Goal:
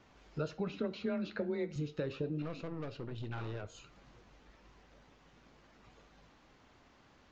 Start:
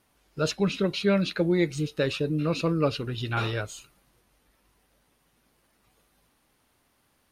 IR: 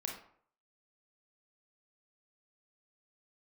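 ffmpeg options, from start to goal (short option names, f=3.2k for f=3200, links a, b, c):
-filter_complex "[0:a]acrossover=split=510|1400[a][b][c];[a]acompressor=threshold=-29dB:ratio=4[d];[b]acompressor=threshold=-33dB:ratio=4[e];[c]acompressor=threshold=-44dB:ratio=4[f];[d][e][f]amix=inputs=3:normalize=0,highshelf=f=4.3k:g=-9,acompressor=threshold=-52dB:ratio=2,asettb=1/sr,asplit=3[g][h][i];[g]atrim=end=2.424[j];[h]atrim=start=2.42:end=3.75,asetpts=PTS-STARTPTS,afade=t=in:d=0.004:c=qsin,afade=t=out:st=1.326:d=0.004:c=qsin,aeval=exprs='(tanh(158*val(0)+0.6)-tanh(0.6))/158':c=same[k];[i]atrim=start=3.746[l];[j][k]acrossfade=d=0.004:c1=hsin:c2=qsin[m];[m][l]acrossfade=d=0.004:c1=qsin:c2=hsin,flanger=delay=0.1:depth=6.3:regen=-82:speed=1.2:shape=sinusoidal,asettb=1/sr,asplit=3[n][o][p];[n]atrim=end=0.734[q];[o]atrim=start=0.73:end=1.76,asetpts=PTS-STARTPTS,afade=t=in:d=0.004:c=qsin,afade=t=out:st=1.026:d=0.004:c=qsin,afreqshift=24[r];[p]atrim=start=1.756[s];[q][r]acrossfade=d=0.004:c1=hsin:c2=qsin[t];[t][s]acrossfade=d=0.004:c1=qsin:c2=hsin,asplit=2[u][v];[1:a]atrim=start_sample=2205,adelay=27[w];[v][w]afir=irnorm=-1:irlink=0,volume=-15dB[x];[u][x]amix=inputs=2:normalize=0,aresample=16000,aresample=44100,volume=11dB"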